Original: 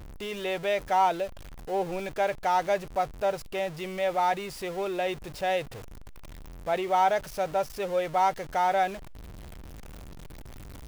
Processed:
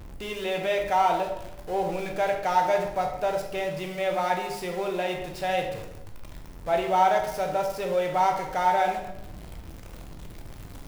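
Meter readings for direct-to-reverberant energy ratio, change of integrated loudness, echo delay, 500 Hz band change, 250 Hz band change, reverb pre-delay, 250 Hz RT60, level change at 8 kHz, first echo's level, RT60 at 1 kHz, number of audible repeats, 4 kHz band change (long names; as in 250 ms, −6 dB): 2.0 dB, +2.0 dB, no echo audible, +2.0 dB, +2.0 dB, 11 ms, 1.1 s, +1.5 dB, no echo audible, 0.85 s, no echo audible, +2.0 dB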